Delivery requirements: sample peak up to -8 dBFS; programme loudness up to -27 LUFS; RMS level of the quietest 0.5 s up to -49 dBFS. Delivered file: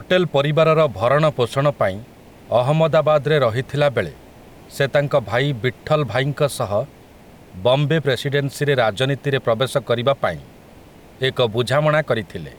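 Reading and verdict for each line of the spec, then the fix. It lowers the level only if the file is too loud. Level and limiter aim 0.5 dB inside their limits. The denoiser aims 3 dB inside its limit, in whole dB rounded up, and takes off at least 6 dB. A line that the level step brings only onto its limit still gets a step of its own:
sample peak -5.5 dBFS: fail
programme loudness -19.0 LUFS: fail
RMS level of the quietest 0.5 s -44 dBFS: fail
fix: trim -8.5 dB

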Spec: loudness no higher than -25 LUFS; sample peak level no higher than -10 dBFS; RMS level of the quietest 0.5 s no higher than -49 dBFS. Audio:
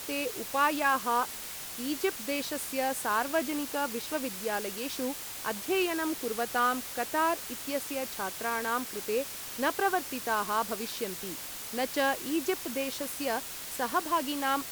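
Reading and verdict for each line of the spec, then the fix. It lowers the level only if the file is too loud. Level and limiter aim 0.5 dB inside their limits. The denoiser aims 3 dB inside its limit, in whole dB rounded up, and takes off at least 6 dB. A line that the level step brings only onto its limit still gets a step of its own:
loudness -31.0 LUFS: pass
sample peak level -14.5 dBFS: pass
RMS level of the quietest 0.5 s -41 dBFS: fail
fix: noise reduction 11 dB, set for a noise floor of -41 dBFS

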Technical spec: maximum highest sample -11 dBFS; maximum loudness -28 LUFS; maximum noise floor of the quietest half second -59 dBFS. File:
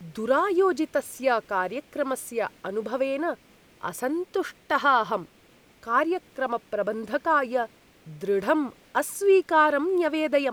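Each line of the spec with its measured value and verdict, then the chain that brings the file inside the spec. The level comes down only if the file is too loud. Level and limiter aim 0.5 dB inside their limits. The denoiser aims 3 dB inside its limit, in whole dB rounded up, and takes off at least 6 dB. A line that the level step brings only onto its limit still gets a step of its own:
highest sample -8.5 dBFS: fail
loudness -25.5 LUFS: fail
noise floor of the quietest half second -57 dBFS: fail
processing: trim -3 dB

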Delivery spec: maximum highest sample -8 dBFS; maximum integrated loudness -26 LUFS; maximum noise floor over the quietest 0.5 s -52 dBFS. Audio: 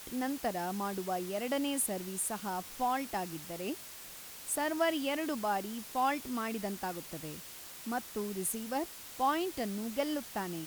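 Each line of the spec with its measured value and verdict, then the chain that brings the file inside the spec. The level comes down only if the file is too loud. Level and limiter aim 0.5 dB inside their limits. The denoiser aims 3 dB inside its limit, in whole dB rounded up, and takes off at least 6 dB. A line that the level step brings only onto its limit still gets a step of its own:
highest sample -18.0 dBFS: pass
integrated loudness -35.5 LUFS: pass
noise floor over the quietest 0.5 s -48 dBFS: fail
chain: noise reduction 7 dB, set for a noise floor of -48 dBFS

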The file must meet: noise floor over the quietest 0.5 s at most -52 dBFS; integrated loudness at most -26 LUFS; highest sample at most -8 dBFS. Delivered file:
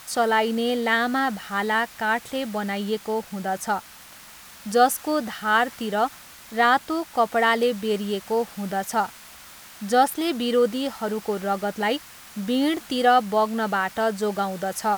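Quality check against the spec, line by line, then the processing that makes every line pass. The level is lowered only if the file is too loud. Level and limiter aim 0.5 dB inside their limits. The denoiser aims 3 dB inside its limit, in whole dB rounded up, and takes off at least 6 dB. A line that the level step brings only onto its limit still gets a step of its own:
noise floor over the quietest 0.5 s -46 dBFS: fail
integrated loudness -23.5 LUFS: fail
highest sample -5.5 dBFS: fail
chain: noise reduction 6 dB, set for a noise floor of -46 dBFS; trim -3 dB

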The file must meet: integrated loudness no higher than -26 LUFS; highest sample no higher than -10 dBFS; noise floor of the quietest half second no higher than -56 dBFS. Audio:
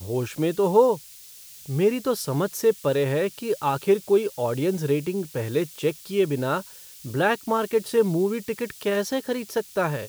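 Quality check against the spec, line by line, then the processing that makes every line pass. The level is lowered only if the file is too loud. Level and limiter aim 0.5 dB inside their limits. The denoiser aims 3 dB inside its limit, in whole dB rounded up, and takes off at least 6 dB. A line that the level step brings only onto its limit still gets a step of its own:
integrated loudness -24.5 LUFS: fail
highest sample -6.0 dBFS: fail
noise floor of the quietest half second -46 dBFS: fail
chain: noise reduction 11 dB, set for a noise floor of -46 dBFS; trim -2 dB; peak limiter -10.5 dBFS

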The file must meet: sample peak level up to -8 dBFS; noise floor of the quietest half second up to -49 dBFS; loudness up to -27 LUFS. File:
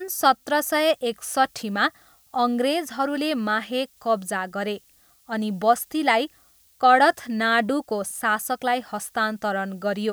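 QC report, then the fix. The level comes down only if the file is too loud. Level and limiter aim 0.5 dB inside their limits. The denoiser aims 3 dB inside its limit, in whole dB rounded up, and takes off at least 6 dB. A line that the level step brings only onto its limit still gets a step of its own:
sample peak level -4.0 dBFS: fail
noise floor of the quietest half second -58 dBFS: pass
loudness -23.5 LUFS: fail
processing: trim -4 dB; peak limiter -8.5 dBFS

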